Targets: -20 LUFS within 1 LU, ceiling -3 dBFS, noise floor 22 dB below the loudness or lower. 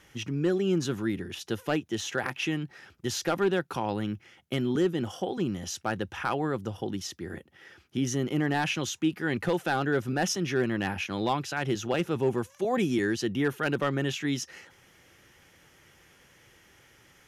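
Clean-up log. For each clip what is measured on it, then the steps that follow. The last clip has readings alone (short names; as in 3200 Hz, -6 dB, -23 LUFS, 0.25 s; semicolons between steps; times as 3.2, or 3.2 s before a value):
clipped 0.2%; flat tops at -17.5 dBFS; loudness -29.5 LUFS; peak -17.5 dBFS; loudness target -20.0 LUFS
-> clip repair -17.5 dBFS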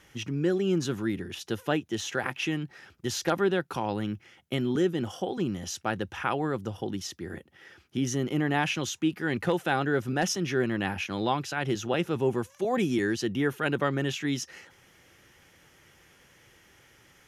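clipped 0.0%; loudness -29.5 LUFS; peak -11.0 dBFS; loudness target -20.0 LUFS
-> gain +9.5 dB; limiter -3 dBFS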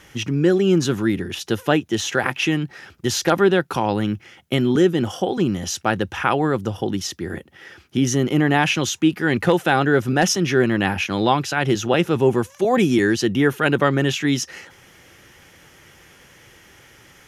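loudness -20.0 LUFS; peak -3.0 dBFS; noise floor -50 dBFS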